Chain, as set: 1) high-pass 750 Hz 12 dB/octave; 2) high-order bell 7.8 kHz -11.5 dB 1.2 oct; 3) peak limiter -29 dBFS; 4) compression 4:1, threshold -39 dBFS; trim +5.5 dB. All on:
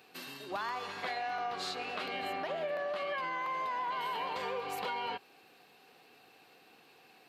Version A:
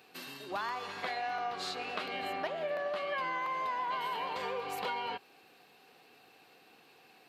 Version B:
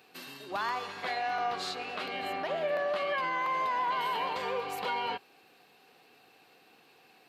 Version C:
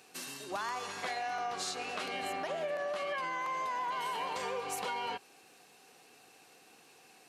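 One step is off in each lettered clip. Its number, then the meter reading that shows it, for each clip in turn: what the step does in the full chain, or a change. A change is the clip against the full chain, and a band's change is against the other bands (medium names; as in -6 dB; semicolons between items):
3, crest factor change +4.0 dB; 4, mean gain reduction 2.0 dB; 2, 8 kHz band +10.5 dB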